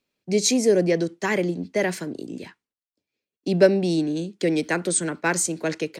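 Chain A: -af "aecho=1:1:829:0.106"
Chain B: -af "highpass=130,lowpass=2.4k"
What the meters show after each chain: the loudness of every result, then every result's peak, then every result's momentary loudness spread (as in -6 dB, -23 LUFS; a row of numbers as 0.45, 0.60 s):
-22.5, -24.0 LUFS; -3.5, -3.5 dBFS; 15, 15 LU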